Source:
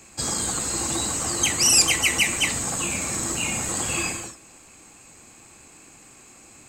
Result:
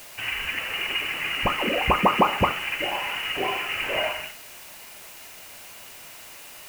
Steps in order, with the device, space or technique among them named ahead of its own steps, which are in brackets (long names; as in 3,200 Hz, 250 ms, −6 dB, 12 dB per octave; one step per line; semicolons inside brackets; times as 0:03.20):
scrambled radio voice (band-pass filter 330–2,800 Hz; voice inversion scrambler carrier 3,200 Hz; white noise bed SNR 17 dB)
level +5.5 dB